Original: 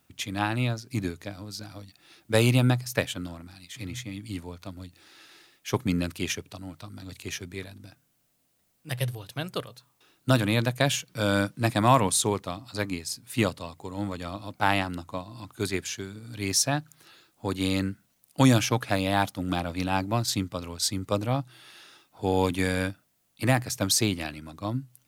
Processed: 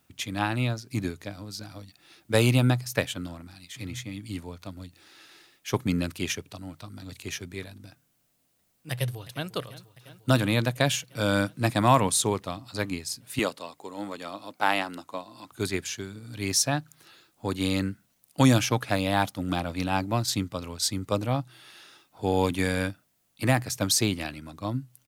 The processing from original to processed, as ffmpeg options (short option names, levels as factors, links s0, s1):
-filter_complex "[0:a]asplit=2[s0][s1];[s1]afade=t=in:st=8.91:d=0.01,afade=t=out:st=9.49:d=0.01,aecho=0:1:350|700|1050|1400|1750|2100|2450|2800|3150|3500|3850|4200:0.141254|0.113003|0.0904024|0.0723219|0.0578575|0.046286|0.0370288|0.0296231|0.0236984|0.0189588|0.015167|0.0121336[s2];[s0][s2]amix=inputs=2:normalize=0,asettb=1/sr,asplit=3[s3][s4][s5];[s3]atrim=end=13.394[s6];[s4]atrim=start=13.39:end=15.52,asetpts=PTS-STARTPTS,afade=t=in:d=0.004:c=qsin,afade=t=out:st=2.126:d=0.004:c=qsin,highpass=290[s7];[s5]atrim=start=15.516[s8];[s6][s7]acrossfade=d=0.004:c1=hsin:c2=qsin[s9];[s9][s8]acrossfade=d=0.004:c1=qsin:c2=hsin"